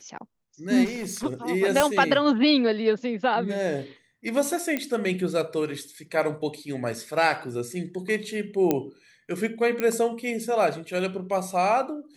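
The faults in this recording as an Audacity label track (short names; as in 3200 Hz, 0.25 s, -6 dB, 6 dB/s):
0.840000	1.260000	clipped -27.5 dBFS
1.800000	1.800000	pop -5 dBFS
4.770000	4.770000	pop -13 dBFS
8.710000	8.710000	pop -9 dBFS
9.800000	9.800000	pop -13 dBFS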